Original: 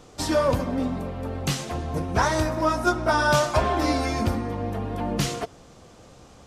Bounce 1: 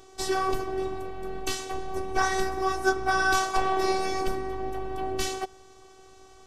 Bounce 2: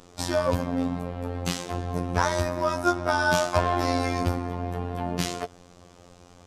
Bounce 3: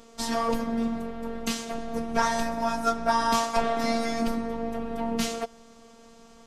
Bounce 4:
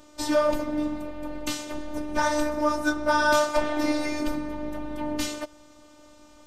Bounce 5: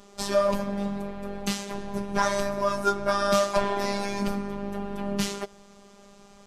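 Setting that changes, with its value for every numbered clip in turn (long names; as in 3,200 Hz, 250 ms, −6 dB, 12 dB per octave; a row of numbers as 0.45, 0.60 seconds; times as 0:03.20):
phases set to zero, frequency: 380, 88, 230, 300, 200 Hertz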